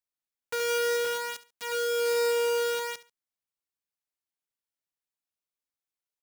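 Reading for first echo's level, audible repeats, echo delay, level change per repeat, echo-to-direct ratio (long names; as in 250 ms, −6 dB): −17.0 dB, 2, 70 ms, −11.5 dB, −16.5 dB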